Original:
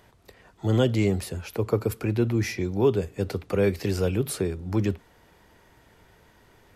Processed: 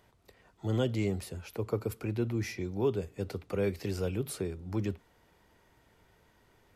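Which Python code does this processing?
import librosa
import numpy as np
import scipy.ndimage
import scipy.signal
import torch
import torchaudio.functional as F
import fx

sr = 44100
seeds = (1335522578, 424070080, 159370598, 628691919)

y = fx.notch(x, sr, hz=1700.0, q=23.0)
y = y * 10.0 ** (-8.0 / 20.0)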